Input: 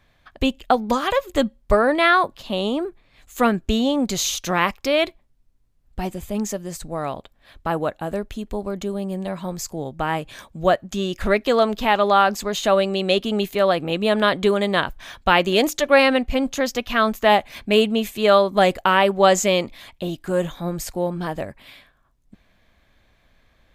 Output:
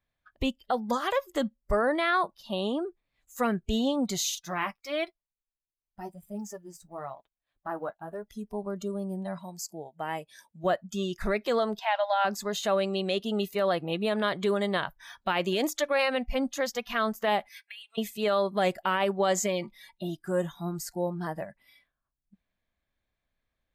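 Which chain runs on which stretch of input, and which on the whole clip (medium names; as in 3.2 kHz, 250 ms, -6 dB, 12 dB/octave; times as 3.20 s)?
4.35–8.28 s: companding laws mixed up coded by A + tone controls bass -2 dB, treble -3 dB + flange 1 Hz, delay 5.3 ms, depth 5.2 ms, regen -33%
9.38–10.64 s: high-pass 350 Hz 6 dB/octave + peaking EQ 1.3 kHz -7 dB 0.8 oct
11.79–12.25 s: brick-wall FIR high-pass 560 Hz + distance through air 62 m + band-stop 1.2 kHz, Q 5.2
17.49–17.98 s: high-pass 1.1 kHz 24 dB/octave + compression 10:1, threshold -32 dBFS
19.46–20.03 s: comb 5.3 ms, depth 45% + compression 2:1, threshold -22 dBFS
whole clip: spectral noise reduction 17 dB; peak limiter -10 dBFS; trim -6.5 dB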